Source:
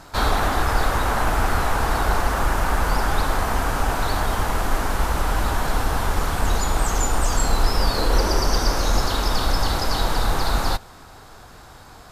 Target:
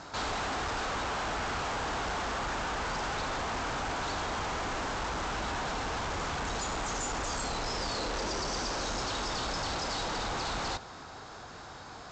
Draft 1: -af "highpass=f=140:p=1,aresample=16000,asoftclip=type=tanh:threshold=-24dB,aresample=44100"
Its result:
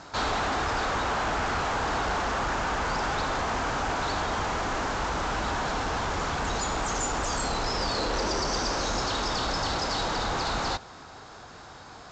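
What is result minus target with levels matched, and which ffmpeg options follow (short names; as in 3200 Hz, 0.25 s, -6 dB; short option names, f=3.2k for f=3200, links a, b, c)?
soft clip: distortion -5 dB
-af "highpass=f=140:p=1,aresample=16000,asoftclip=type=tanh:threshold=-32dB,aresample=44100"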